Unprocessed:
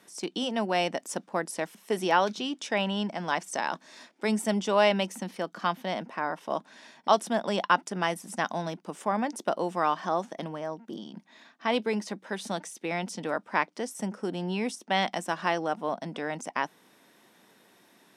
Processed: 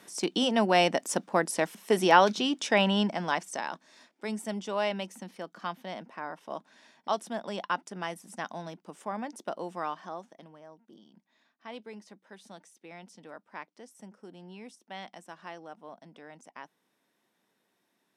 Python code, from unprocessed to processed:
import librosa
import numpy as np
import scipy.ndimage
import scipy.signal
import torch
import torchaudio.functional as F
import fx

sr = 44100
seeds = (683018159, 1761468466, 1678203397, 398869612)

y = fx.gain(x, sr, db=fx.line((3.0, 4.0), (3.85, -7.5), (9.81, -7.5), (10.44, -16.0)))